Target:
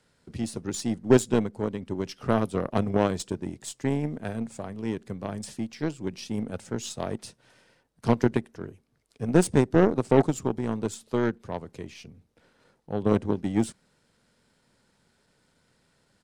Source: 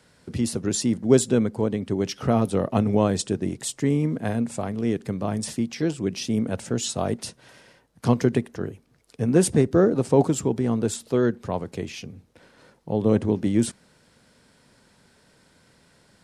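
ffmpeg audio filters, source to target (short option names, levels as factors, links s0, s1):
-af "aeval=exprs='if(lt(val(0),0),0.708*val(0),val(0))':c=same,aeval=exprs='0.562*(cos(1*acos(clip(val(0)/0.562,-1,1)))-cos(1*PI/2))+0.00447*(cos(4*acos(clip(val(0)/0.562,-1,1)))-cos(4*PI/2))+0.00501*(cos(5*acos(clip(val(0)/0.562,-1,1)))-cos(5*PI/2))+0.0501*(cos(7*acos(clip(val(0)/0.562,-1,1)))-cos(7*PI/2))+0.00398*(cos(8*acos(clip(val(0)/0.562,-1,1)))-cos(8*PI/2))':c=same,asetrate=42845,aresample=44100,atempo=1.0293"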